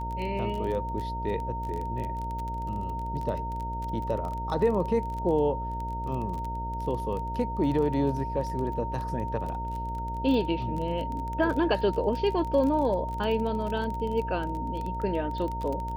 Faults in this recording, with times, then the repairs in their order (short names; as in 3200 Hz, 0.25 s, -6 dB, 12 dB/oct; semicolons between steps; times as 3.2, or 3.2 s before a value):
buzz 60 Hz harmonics 11 -35 dBFS
crackle 21/s -32 dBFS
tone 920 Hz -33 dBFS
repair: de-click; de-hum 60 Hz, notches 11; notch 920 Hz, Q 30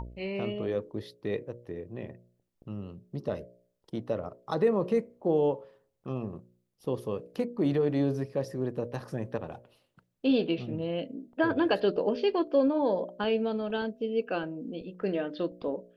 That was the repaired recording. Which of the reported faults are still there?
none